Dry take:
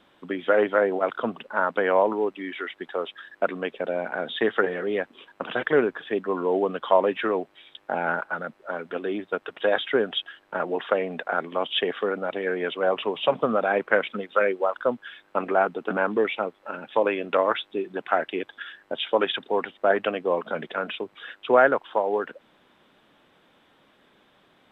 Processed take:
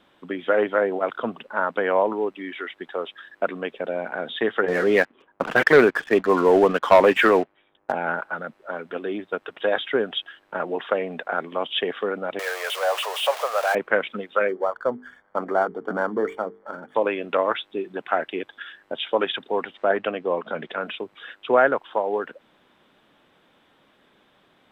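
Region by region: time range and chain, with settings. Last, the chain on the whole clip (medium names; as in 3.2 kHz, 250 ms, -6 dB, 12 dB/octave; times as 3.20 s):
4.68–7.92 s: level-controlled noise filter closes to 1 kHz, open at -15.5 dBFS + dynamic bell 2 kHz, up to +6 dB, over -40 dBFS, Q 1.1 + waveshaping leveller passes 2
12.39–13.75 s: jump at every zero crossing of -25.5 dBFS + steep high-pass 540 Hz
14.48–16.95 s: dead-time distortion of 0.1 ms + Savitzky-Golay filter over 41 samples + hum notches 50/100/150/200/250/300/350/400/450 Hz
19.74–20.81 s: distance through air 74 m + tape noise reduction on one side only encoder only
whole clip: none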